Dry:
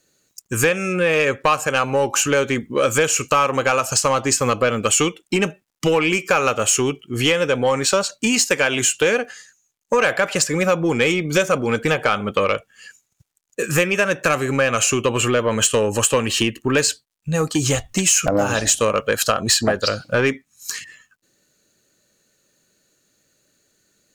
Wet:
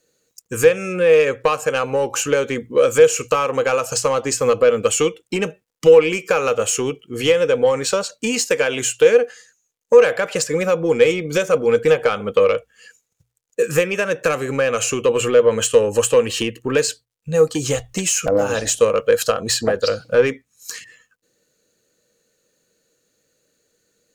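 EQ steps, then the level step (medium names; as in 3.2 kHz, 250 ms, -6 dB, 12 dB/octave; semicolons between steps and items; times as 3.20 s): peaking EQ 480 Hz +14.5 dB 0.2 oct; hum notches 60/120 Hz; -3.5 dB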